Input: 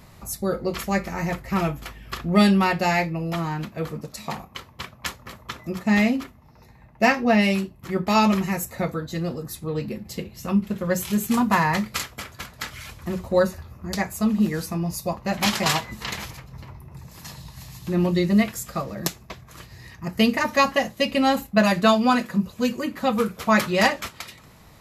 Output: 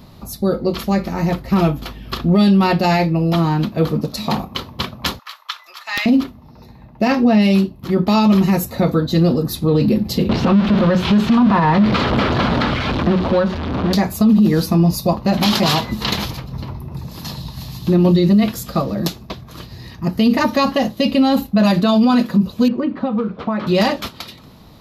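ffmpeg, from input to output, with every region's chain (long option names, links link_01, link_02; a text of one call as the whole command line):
ffmpeg -i in.wav -filter_complex "[0:a]asettb=1/sr,asplit=3[link_01][link_02][link_03];[link_01]atrim=end=5.194[link_04];[link_02]atrim=start=5.19:end=6.06,asetpts=PTS-STARTPTS,afade=type=in:duration=0.004:curve=qsin,afade=type=out:start_time=0.866:duration=0.004:curve=qsin,highpass=frequency=1100:width=0.5412,highpass=frequency=1100:width=1.3066,aeval=exprs='(mod(5.96*val(0)+1,2)-1)/5.96':channel_layout=same,highshelf=frequency=8800:gain=-6[link_05];[link_03]atrim=start=6.056[link_06];[link_04][link_05]acrossfade=duration=0.004:curve1=hsin:curve2=qsin[link_07];[link_07][link_06]acrossfade=duration=0.004:curve1=qsin:curve2=hsin,asettb=1/sr,asplit=3[link_08][link_09][link_10];[link_08]atrim=end=10.294[link_11];[link_09]atrim=start=10.29:end=13.93,asetpts=PTS-STARTPTS,afade=type=in:duration=0.004:curve=qsin,afade=type=out:start_time=3.636:duration=0.004:curve=qsin,aeval=exprs='val(0)+0.5*0.0708*sgn(val(0))':channel_layout=same,lowpass=2300,acrossover=split=170|1000[link_12][link_13][link_14];[link_12]acompressor=threshold=-40dB:ratio=4[link_15];[link_13]acompressor=threshold=-31dB:ratio=4[link_16];[link_14]acompressor=threshold=-32dB:ratio=4[link_17];[link_15][link_16][link_17]amix=inputs=3:normalize=0[link_18];[link_10]atrim=start=13.926[link_19];[link_11][link_18]acrossfade=duration=0.004:curve1=hsin:curve2=qsin[link_20];[link_20][link_19]acrossfade=duration=0.004:curve1=qsin:curve2=hsin,asettb=1/sr,asplit=3[link_21][link_22][link_23];[link_21]atrim=end=22.684[link_24];[link_22]atrim=start=22.68:end=23.67,asetpts=PTS-STARTPTS,afade=type=in:duration=0.004:curve=qsin,afade=type=out:start_time=0.986:duration=0.004:curve=qsin,lowpass=1900,acompressor=threshold=-25dB:ratio=10:attack=3.2:release=140:knee=1:detection=peak,lowshelf=frequency=130:gain=-7[link_25];[link_23]atrim=start=23.666[link_26];[link_24][link_25]acrossfade=duration=0.004:curve1=hsin:curve2=qsin[link_27];[link_27][link_26]acrossfade=duration=0.004:curve1=qsin:curve2=hsin,equalizer=frequency=250:width_type=o:width=1:gain=6,equalizer=frequency=2000:width_type=o:width=1:gain=-8,equalizer=frequency=4000:width_type=o:width=1:gain=7,equalizer=frequency=8000:width_type=o:width=1:gain=-12,dynaudnorm=framelen=310:gausssize=9:maxgain=11.5dB,alimiter=limit=-11.5dB:level=0:latency=1:release=21,volume=5dB" out.wav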